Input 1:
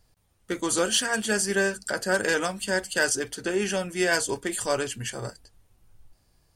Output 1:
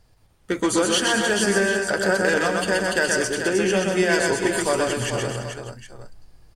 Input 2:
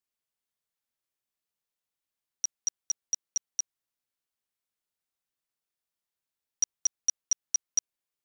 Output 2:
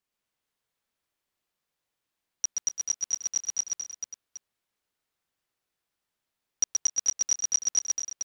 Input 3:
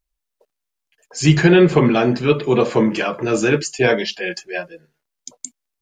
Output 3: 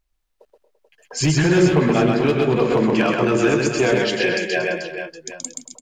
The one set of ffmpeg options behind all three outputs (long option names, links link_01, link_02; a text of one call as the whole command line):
ffmpeg -i in.wav -filter_complex "[0:a]highshelf=frequency=5000:gain=-8,acompressor=threshold=-25dB:ratio=3,asoftclip=type=hard:threshold=-18dB,asplit=2[link_01][link_02];[link_02]aecho=0:1:126|231|258|339|436|766:0.708|0.251|0.15|0.178|0.398|0.178[link_03];[link_01][link_03]amix=inputs=2:normalize=0,volume=6.5dB" out.wav